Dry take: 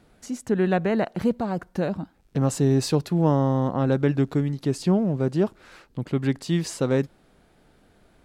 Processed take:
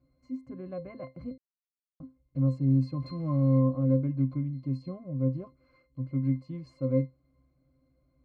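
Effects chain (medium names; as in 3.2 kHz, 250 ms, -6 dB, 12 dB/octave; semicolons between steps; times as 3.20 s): 3.02–3.59 s: jump at every zero crossing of -27 dBFS; pitch-class resonator C, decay 0.2 s; 1.38–2.00 s: mute; 4.20–5.03 s: dynamic bell 3 kHz, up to +5 dB, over -54 dBFS, Q 0.79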